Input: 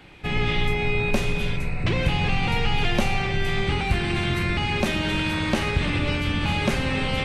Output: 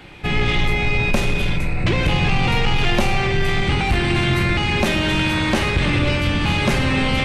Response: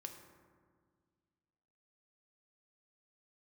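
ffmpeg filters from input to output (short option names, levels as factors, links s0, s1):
-filter_complex "[0:a]asoftclip=type=tanh:threshold=0.15,asplit=2[s0][s1];[1:a]atrim=start_sample=2205[s2];[s1][s2]afir=irnorm=-1:irlink=0,volume=1.33[s3];[s0][s3]amix=inputs=2:normalize=0,volume=1.26"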